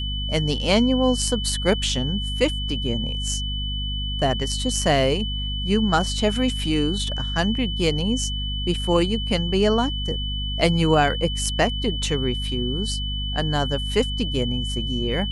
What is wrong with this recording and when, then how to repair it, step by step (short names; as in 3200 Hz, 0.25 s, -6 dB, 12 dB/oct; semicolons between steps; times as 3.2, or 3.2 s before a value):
hum 50 Hz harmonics 5 -28 dBFS
tone 3000 Hz -29 dBFS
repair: notch 3000 Hz, Q 30; de-hum 50 Hz, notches 5